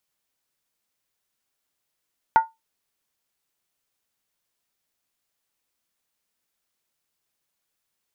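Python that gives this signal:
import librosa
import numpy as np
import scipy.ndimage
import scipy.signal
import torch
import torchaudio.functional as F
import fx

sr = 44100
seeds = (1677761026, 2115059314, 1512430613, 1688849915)

y = fx.strike_skin(sr, length_s=0.63, level_db=-8, hz=898.0, decay_s=0.19, tilt_db=11.0, modes=5)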